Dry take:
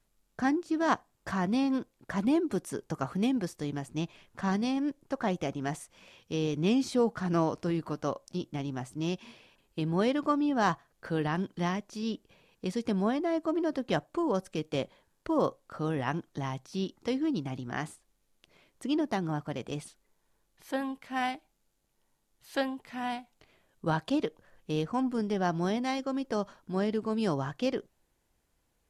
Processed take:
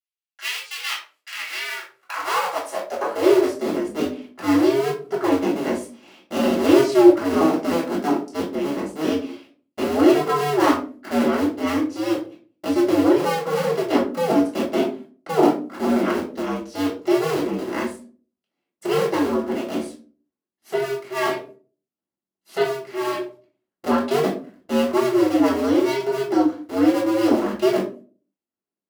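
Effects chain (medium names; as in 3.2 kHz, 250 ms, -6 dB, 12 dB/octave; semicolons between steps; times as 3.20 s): cycle switcher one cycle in 2, inverted; gate -56 dBFS, range -26 dB; high-pass sweep 2.7 kHz -> 260 Hz, 1.30–3.73 s; reverberation RT60 0.40 s, pre-delay 3 ms, DRR -6.5 dB; trim -3.5 dB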